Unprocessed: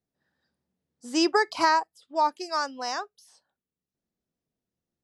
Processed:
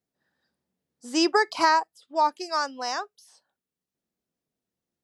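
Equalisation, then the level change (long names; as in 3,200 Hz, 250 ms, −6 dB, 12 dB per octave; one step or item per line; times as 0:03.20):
low-shelf EQ 120 Hz −8.5 dB
+1.5 dB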